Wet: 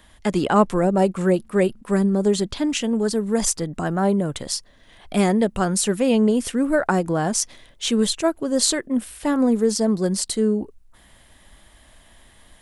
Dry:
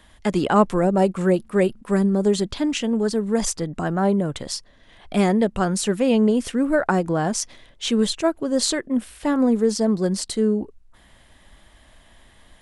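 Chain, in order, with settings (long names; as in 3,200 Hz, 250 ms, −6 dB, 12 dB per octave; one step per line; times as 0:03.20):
high-shelf EQ 9,700 Hz +5.5 dB, from 0:02.69 +12 dB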